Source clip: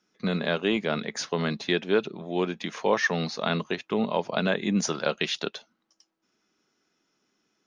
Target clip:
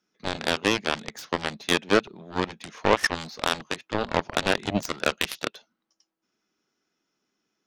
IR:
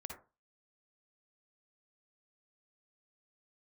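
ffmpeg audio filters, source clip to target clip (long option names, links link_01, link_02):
-af "aeval=exprs='0.355*(cos(1*acos(clip(val(0)/0.355,-1,1)))-cos(1*PI/2))+0.0708*(cos(7*acos(clip(val(0)/0.355,-1,1)))-cos(7*PI/2))':channel_layout=same,volume=3.5dB"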